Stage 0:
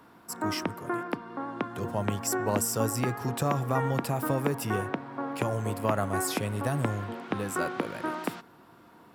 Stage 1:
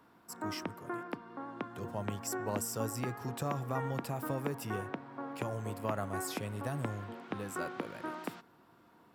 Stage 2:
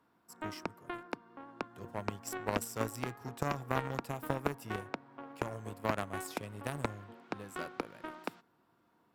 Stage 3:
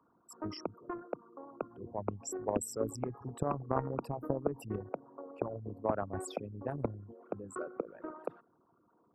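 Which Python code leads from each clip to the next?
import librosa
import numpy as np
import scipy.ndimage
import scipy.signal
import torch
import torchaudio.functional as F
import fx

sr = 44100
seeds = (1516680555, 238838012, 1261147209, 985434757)

y1 = fx.peak_eq(x, sr, hz=10000.0, db=-3.5, octaves=0.23)
y1 = y1 * librosa.db_to_amplitude(-8.0)
y2 = fx.cheby_harmonics(y1, sr, harmonics=(3,), levels_db=(-11,), full_scale_db=-21.5)
y2 = y2 * librosa.db_to_amplitude(7.5)
y3 = fx.envelope_sharpen(y2, sr, power=3.0)
y3 = y3 * librosa.db_to_amplitude(1.0)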